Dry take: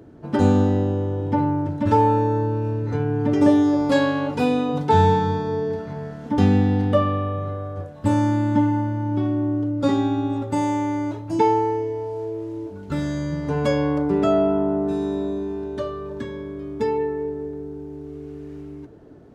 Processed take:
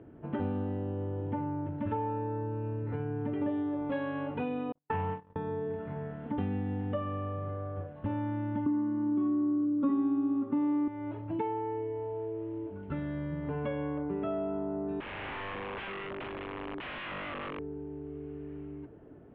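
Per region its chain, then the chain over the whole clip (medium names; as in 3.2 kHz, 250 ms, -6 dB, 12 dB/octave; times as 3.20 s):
4.72–5.36 s: self-modulated delay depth 0.26 ms + gate -18 dBFS, range -58 dB + decimation joined by straight lines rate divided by 6×
8.66–10.88 s: high-pass 160 Hz + small resonant body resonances 260/1100 Hz, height 18 dB, ringing for 30 ms
15.00–17.59 s: high-pass 170 Hz + integer overflow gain 27 dB
whole clip: steep low-pass 3.1 kHz 48 dB/octave; compression 3:1, threshold -27 dBFS; trim -6 dB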